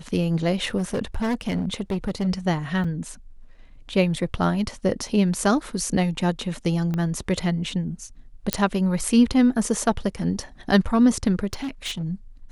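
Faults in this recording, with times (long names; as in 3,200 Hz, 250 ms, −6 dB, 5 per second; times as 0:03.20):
0:00.77–0:02.28: clipping −20.5 dBFS
0:02.84: drop-out 4.9 ms
0:06.94: click −16 dBFS
0:08.53: click −3 dBFS
0:11.53–0:12.03: clipping −25 dBFS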